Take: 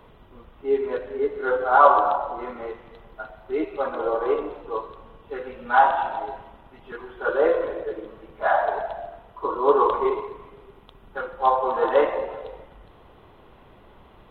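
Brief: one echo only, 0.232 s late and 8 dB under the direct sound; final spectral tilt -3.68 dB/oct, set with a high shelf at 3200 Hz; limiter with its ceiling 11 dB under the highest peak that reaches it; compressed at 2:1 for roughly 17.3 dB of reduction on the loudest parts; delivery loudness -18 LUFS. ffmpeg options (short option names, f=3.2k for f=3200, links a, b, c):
-af "highshelf=f=3.2k:g=3,acompressor=threshold=-43dB:ratio=2,alimiter=level_in=5.5dB:limit=-24dB:level=0:latency=1,volume=-5.5dB,aecho=1:1:232:0.398,volume=21.5dB"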